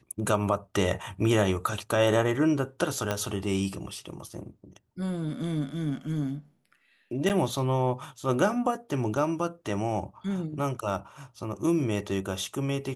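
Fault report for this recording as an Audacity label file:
3.110000	3.110000	click −13 dBFS
7.290000	7.300000	drop-out 8.2 ms

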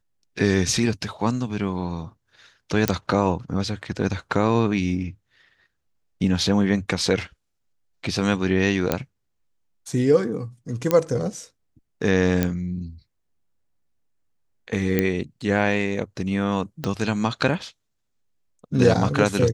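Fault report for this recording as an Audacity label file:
2.880000	2.880000	click −4 dBFS
8.920000	8.920000	click −6 dBFS
10.910000	10.910000	click −6 dBFS
12.430000	12.430000	click −7 dBFS
14.990000	14.990000	click −7 dBFS
16.840000	16.840000	click −12 dBFS

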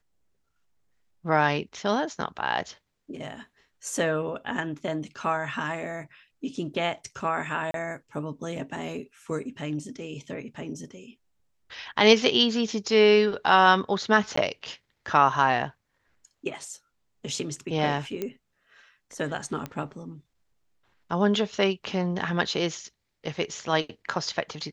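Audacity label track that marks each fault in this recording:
7.710000	7.740000	drop-out 32 ms
14.360000	14.370000	drop-out 14 ms
18.220000	18.220000	click −17 dBFS
19.660000	19.660000	click −19 dBFS

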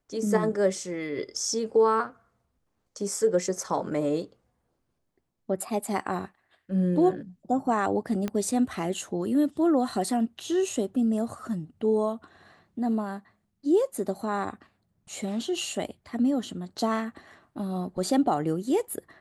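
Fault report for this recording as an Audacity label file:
8.280000	8.280000	click −17 dBFS

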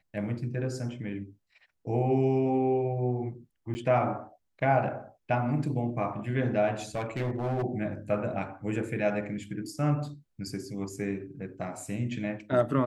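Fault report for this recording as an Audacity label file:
3.740000	3.750000	drop-out 10 ms
6.950000	7.640000	clipping −26 dBFS

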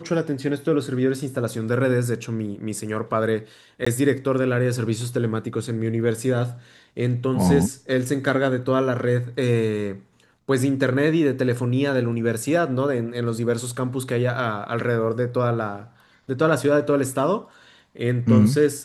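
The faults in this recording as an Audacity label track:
3.850000	3.870000	drop-out 15 ms

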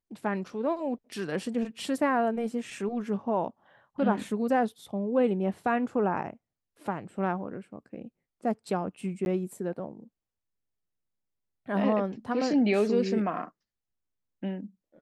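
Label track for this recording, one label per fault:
9.250000	9.260000	drop-out 11 ms

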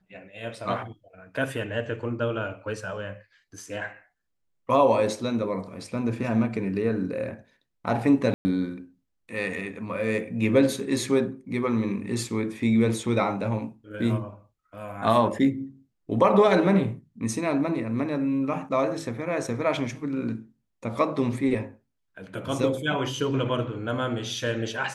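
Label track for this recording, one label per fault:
8.340000	8.450000	drop-out 110 ms

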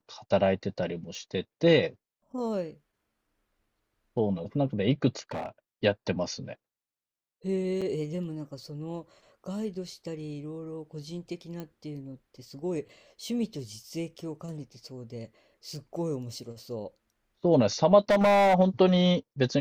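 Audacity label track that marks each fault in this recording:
1.150000	1.150000	click
5.310000	5.490000	clipping −30 dBFS
7.810000	7.820000	drop-out 5.9 ms
11.600000	11.600000	click −25 dBFS
18.100000	18.550000	clipping −18.5 dBFS

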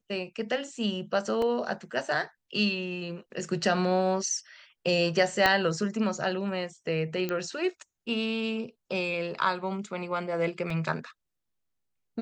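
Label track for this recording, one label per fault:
1.420000	1.420000	drop-out 2.6 ms
5.460000	5.460000	click −8 dBFS
7.290000	7.290000	click −17 dBFS
10.700000	10.700000	drop-out 3.2 ms

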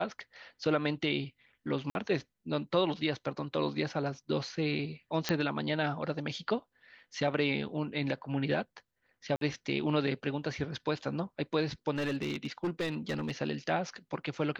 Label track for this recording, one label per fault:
1.900000	1.950000	drop-out 51 ms
5.290000	5.290000	click −13 dBFS
9.360000	9.410000	drop-out 52 ms
11.960000	13.310000	clipping −28 dBFS

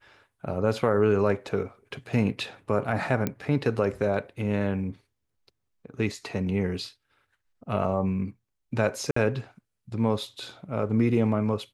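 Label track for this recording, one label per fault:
3.270000	3.270000	click −13 dBFS
9.110000	9.160000	drop-out 54 ms

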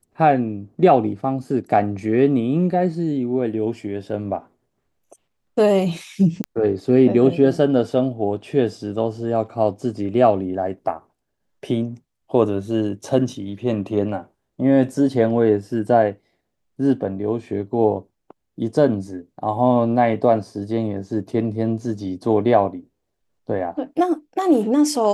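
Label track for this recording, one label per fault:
6.440000	6.440000	click −11 dBFS

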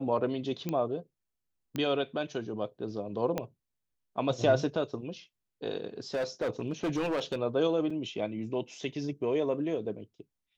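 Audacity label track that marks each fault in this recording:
0.690000	0.690000	click −19 dBFS
1.760000	1.760000	click −20 dBFS
3.380000	3.380000	click −17 dBFS
6.140000	7.360000	clipping −26.5 dBFS
7.900000	7.900000	drop-out 4.4 ms

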